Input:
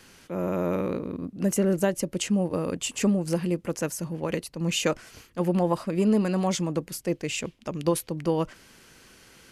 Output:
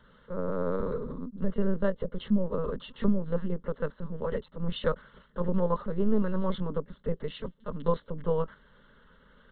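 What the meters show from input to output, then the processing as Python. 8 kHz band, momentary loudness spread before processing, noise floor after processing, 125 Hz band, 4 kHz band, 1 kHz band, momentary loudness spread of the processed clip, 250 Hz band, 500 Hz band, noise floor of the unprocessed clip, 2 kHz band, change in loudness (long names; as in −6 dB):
below −40 dB, 8 LU, −61 dBFS, −4.5 dB, −11.0 dB, −4.0 dB, 9 LU, −5.0 dB, −3.0 dB, −56 dBFS, −8.5 dB, −4.5 dB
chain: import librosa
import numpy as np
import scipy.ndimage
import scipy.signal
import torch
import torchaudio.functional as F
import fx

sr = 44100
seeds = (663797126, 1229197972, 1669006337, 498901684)

y = fx.lpc_vocoder(x, sr, seeds[0], excitation='pitch_kept', order=10)
y = fx.fixed_phaser(y, sr, hz=490.0, stages=8)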